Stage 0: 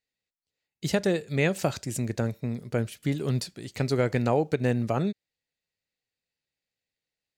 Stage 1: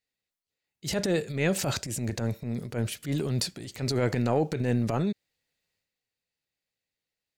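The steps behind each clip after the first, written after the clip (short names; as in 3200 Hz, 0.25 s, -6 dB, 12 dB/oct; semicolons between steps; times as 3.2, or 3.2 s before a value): transient shaper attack -10 dB, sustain +7 dB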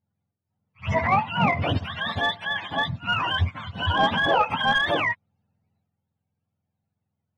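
spectrum mirrored in octaves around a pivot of 630 Hz; pre-echo 72 ms -21 dB; overdrive pedal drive 12 dB, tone 1300 Hz, clips at -14 dBFS; gain +7 dB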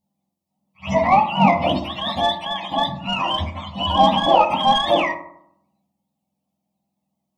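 fixed phaser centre 410 Hz, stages 6; on a send at -5 dB: reverb RT60 0.70 s, pre-delay 3 ms; on the sum: gain +7.5 dB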